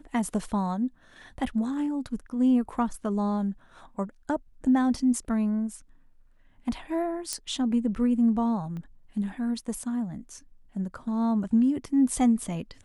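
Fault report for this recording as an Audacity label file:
7.330000	7.330000	pop -15 dBFS
8.770000	8.770000	pop -29 dBFS

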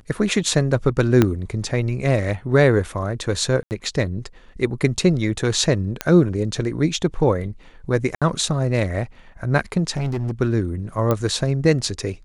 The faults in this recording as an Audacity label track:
1.220000	1.220000	pop -3 dBFS
3.630000	3.710000	dropout 79 ms
6.010000	6.010000	pop -6 dBFS
8.150000	8.220000	dropout 66 ms
9.960000	10.310000	clipped -19.5 dBFS
11.110000	11.110000	pop -8 dBFS

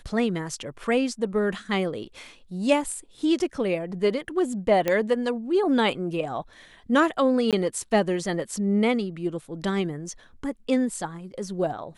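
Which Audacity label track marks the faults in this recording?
4.880000	4.880000	pop -10 dBFS
7.510000	7.530000	dropout 17 ms

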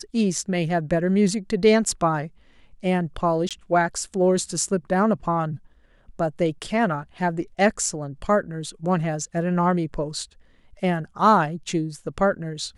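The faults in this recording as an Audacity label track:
3.490000	3.510000	dropout 17 ms

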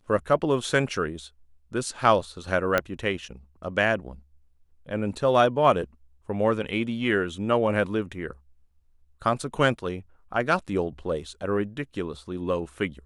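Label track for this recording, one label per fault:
2.780000	2.780000	pop -8 dBFS

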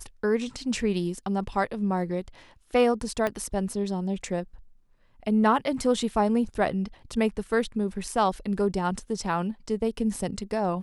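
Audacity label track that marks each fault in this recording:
3.270000	3.270000	pop -14 dBFS

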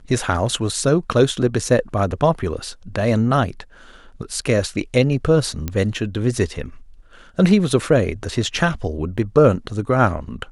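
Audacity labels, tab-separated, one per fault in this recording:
5.680000	5.680000	pop -10 dBFS
9.180000	9.180000	dropout 3.8 ms

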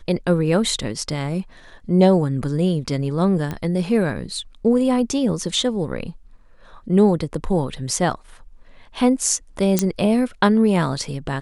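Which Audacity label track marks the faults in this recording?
3.510000	3.510000	pop -14 dBFS
9.790000	9.790000	pop -2 dBFS

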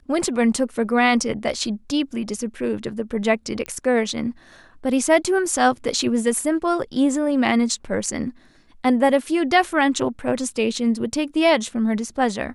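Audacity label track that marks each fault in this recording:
3.660000	3.660000	pop -14 dBFS

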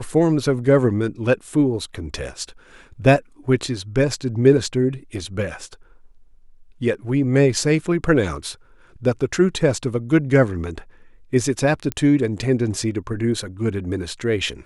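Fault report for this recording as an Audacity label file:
11.920000	11.920000	pop -9 dBFS

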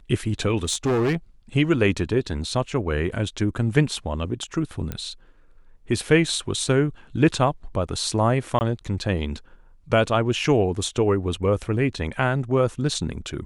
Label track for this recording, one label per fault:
0.580000	1.160000	clipped -18 dBFS
4.920000	4.920000	pop -15 dBFS
8.590000	8.610000	dropout 19 ms

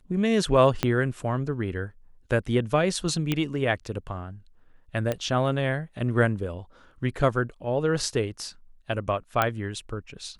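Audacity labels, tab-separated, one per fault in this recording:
0.830000	0.830000	pop -8 dBFS
3.320000	3.320000	pop -11 dBFS
5.120000	5.120000	pop -14 dBFS
9.420000	9.420000	pop -8 dBFS

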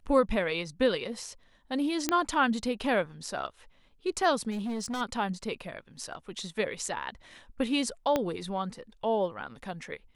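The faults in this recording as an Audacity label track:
2.090000	2.090000	pop -11 dBFS
4.500000	5.020000	clipped -30 dBFS
8.160000	8.160000	pop -13 dBFS

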